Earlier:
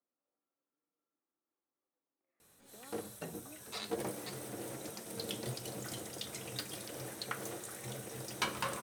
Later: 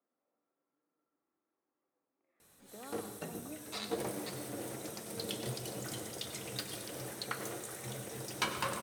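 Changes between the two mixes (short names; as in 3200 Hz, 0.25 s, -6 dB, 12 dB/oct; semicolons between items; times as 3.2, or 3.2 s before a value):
speech +6.0 dB; reverb: on, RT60 0.85 s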